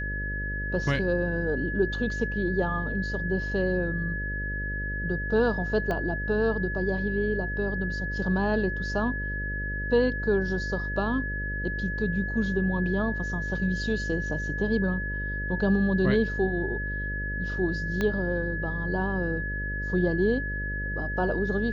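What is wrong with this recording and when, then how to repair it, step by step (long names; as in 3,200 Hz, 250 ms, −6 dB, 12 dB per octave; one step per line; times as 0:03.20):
mains buzz 50 Hz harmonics 12 −33 dBFS
whistle 1,700 Hz −32 dBFS
0:05.91: click −18 dBFS
0:18.01: click −15 dBFS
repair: click removal
hum removal 50 Hz, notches 12
notch filter 1,700 Hz, Q 30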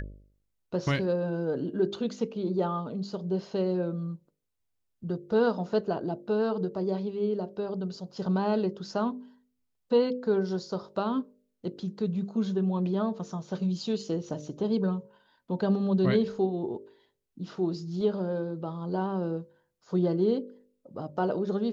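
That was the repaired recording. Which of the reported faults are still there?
0:05.91: click
0:18.01: click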